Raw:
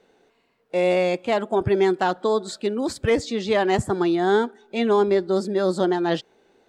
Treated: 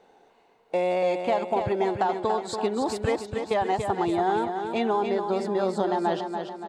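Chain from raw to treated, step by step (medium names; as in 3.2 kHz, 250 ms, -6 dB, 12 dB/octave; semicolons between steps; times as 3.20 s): 3.16–3.69 s: gate -21 dBFS, range -19 dB; peaking EQ 830 Hz +11 dB 0.78 oct; compression, threshold -21 dBFS, peak gain reduction 11 dB; on a send: feedback delay 286 ms, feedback 52%, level -6.5 dB; on the sum: trim -1.5 dB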